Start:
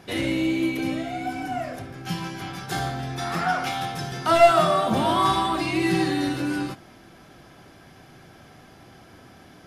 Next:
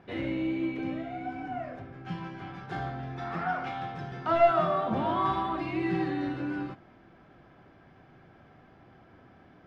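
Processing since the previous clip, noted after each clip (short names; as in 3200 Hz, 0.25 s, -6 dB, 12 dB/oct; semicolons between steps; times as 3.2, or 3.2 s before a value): LPF 2100 Hz 12 dB/oct; gain -6.5 dB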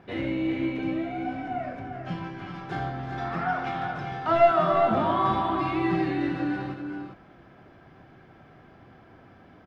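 tapped delay 0.347/0.398 s -13/-7.5 dB; gain +3 dB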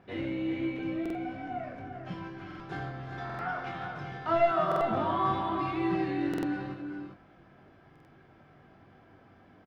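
doubler 21 ms -7 dB; stuck buffer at 1.01/2.46/3.25/4.67/6.29/7.91, samples 2048, times 2; gain -6 dB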